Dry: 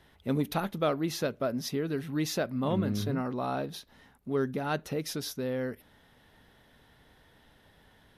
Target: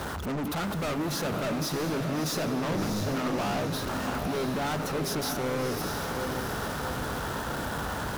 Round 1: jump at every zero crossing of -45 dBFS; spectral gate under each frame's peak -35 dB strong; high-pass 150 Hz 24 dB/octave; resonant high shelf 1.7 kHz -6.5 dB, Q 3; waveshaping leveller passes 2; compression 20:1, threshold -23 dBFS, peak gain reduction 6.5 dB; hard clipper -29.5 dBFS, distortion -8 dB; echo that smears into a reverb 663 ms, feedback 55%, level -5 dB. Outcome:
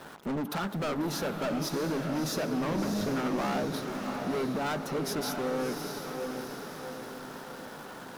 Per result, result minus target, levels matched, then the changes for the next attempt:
compression: peak gain reduction +6.5 dB; jump at every zero crossing: distortion -10 dB; 125 Hz band -3.0 dB
remove: compression 20:1, threshold -23 dBFS, peak gain reduction 6.5 dB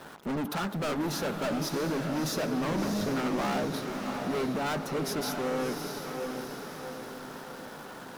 jump at every zero crossing: distortion -10 dB; 125 Hz band -3.0 dB
change: jump at every zero crossing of -34 dBFS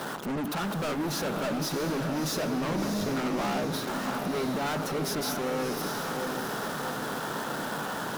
125 Hz band -3.0 dB
change: high-pass 42 Hz 24 dB/octave

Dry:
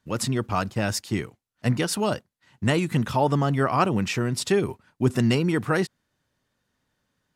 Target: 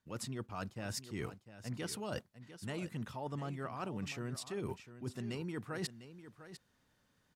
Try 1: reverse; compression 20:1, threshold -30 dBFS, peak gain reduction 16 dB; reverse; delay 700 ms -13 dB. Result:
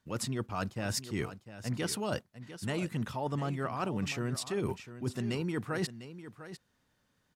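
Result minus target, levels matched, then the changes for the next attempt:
compression: peak gain reduction -7 dB
change: compression 20:1, threshold -37.5 dBFS, peak gain reduction 23.5 dB

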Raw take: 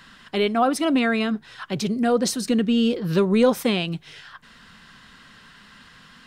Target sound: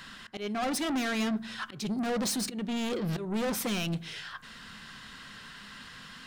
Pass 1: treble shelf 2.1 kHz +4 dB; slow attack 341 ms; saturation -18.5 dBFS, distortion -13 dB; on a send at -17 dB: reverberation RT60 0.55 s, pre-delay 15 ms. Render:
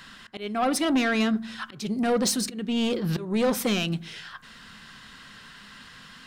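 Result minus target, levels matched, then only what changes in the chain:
saturation: distortion -7 dB
change: saturation -28.5 dBFS, distortion -5 dB

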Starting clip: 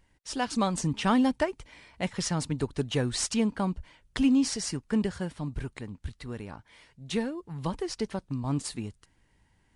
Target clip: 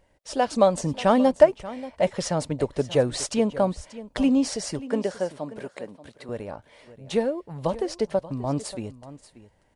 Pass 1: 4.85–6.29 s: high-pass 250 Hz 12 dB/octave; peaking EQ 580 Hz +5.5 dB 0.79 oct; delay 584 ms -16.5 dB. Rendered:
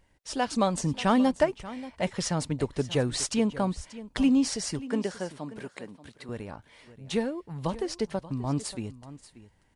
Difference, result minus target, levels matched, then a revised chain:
500 Hz band -4.0 dB
4.85–6.29 s: high-pass 250 Hz 12 dB/octave; peaking EQ 580 Hz +16 dB 0.79 oct; delay 584 ms -16.5 dB

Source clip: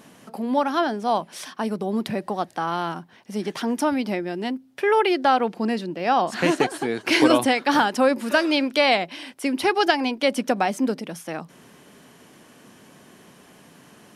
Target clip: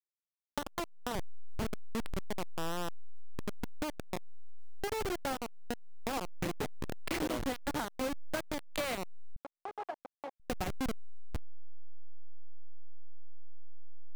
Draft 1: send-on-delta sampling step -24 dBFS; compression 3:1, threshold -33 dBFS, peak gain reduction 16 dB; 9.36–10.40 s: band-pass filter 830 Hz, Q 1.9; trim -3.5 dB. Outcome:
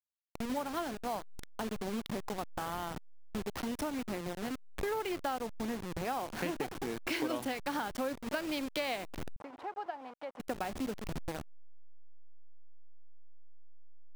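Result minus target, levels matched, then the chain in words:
send-on-delta sampling: distortion -16 dB
send-on-delta sampling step -13 dBFS; compression 3:1, threshold -33 dBFS, peak gain reduction 15.5 dB; 9.36–10.40 s: band-pass filter 830 Hz, Q 1.9; trim -3.5 dB

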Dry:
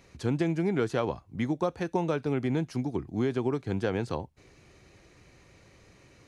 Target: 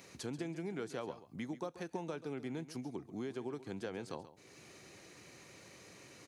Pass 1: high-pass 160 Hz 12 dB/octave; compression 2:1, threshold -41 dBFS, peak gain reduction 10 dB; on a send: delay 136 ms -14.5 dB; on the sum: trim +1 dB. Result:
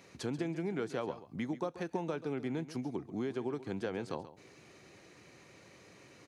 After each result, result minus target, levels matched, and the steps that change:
8 kHz band -6.5 dB; compression: peak gain reduction -5 dB
add after high-pass: treble shelf 5.4 kHz +9.5 dB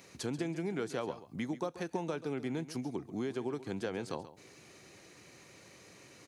compression: peak gain reduction -5 dB
change: compression 2:1, threshold -51 dBFS, peak gain reduction 15 dB

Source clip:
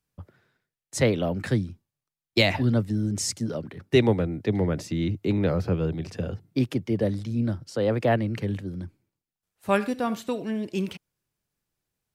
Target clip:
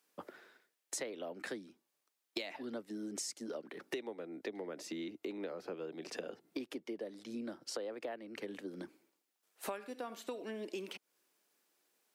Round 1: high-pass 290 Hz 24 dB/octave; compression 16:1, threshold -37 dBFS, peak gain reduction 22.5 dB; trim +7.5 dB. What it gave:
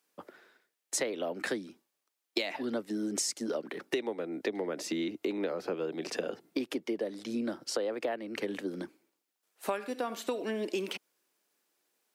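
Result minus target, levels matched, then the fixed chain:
compression: peak gain reduction -9 dB
high-pass 290 Hz 24 dB/octave; compression 16:1, threshold -46.5 dBFS, peak gain reduction 31 dB; trim +7.5 dB

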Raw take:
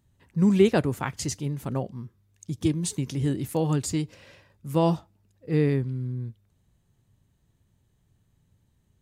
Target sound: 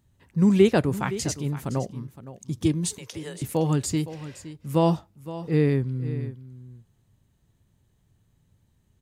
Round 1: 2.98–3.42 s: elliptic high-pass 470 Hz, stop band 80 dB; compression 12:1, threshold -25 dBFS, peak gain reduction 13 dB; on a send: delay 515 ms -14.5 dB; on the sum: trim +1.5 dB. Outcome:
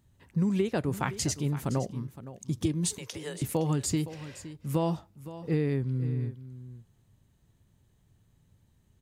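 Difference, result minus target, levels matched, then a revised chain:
compression: peak gain reduction +13 dB
2.98–3.42 s: elliptic high-pass 470 Hz, stop band 80 dB; on a send: delay 515 ms -14.5 dB; on the sum: trim +1.5 dB

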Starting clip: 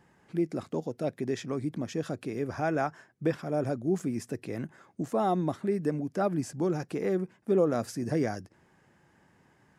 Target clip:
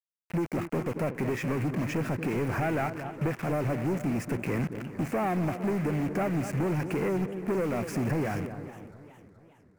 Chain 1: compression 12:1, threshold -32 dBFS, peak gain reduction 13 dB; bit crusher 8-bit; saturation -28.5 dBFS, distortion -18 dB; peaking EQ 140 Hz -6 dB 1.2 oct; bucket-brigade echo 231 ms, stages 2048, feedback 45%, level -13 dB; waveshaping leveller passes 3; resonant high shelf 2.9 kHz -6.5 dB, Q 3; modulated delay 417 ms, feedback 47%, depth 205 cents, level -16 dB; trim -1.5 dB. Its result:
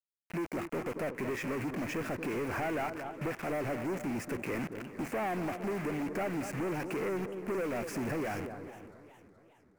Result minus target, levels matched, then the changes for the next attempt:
saturation: distortion +15 dB; 125 Hz band -5.5 dB
change: saturation -19.5 dBFS, distortion -33 dB; change: peaking EQ 140 Hz +5 dB 1.2 oct

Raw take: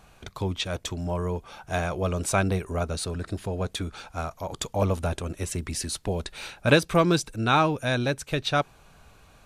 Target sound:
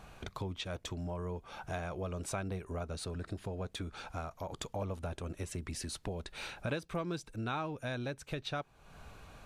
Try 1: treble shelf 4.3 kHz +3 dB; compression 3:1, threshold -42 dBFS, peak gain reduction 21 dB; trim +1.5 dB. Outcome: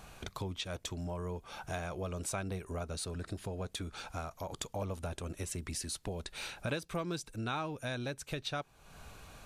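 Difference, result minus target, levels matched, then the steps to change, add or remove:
8 kHz band +4.0 dB
change: treble shelf 4.3 kHz -6 dB

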